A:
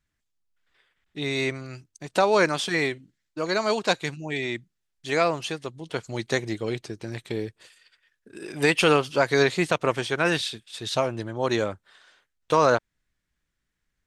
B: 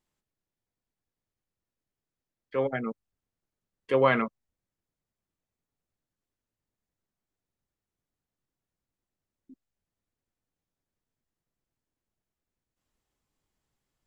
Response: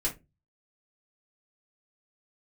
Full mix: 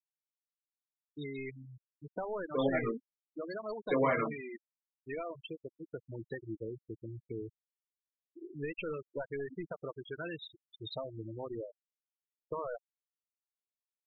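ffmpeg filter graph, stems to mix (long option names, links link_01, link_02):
-filter_complex "[0:a]aeval=exprs='(tanh(6.31*val(0)+0.25)-tanh(0.25))/6.31':channel_layout=same,acompressor=threshold=-30dB:ratio=3,volume=-7.5dB,asplit=3[link_01][link_02][link_03];[link_02]volume=-21dB[link_04];[1:a]alimiter=limit=-16dB:level=0:latency=1:release=443,volume=-2.5dB,asplit=2[link_05][link_06];[link_06]volume=-5.5dB[link_07];[link_03]apad=whole_len=620123[link_08];[link_05][link_08]sidechaincompress=threshold=-45dB:ratio=3:attack=16:release=339[link_09];[2:a]atrim=start_sample=2205[link_10];[link_04][link_07]amix=inputs=2:normalize=0[link_11];[link_11][link_10]afir=irnorm=-1:irlink=0[link_12];[link_01][link_09][link_12]amix=inputs=3:normalize=0,afftfilt=real='re*gte(hypot(re,im),0.0355)':imag='im*gte(hypot(re,im),0.0355)':win_size=1024:overlap=0.75"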